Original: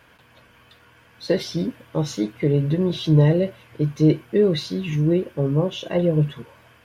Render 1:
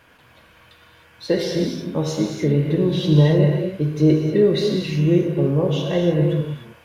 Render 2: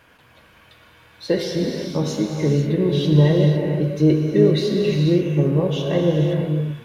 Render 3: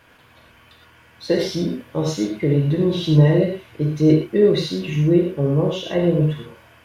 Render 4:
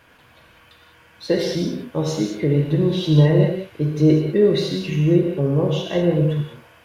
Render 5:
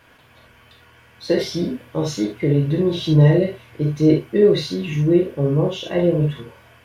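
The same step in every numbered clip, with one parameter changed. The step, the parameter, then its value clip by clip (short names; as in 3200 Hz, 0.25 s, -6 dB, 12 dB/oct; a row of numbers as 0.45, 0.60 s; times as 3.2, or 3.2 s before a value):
non-linear reverb, gate: 330, 530, 140, 220, 90 ms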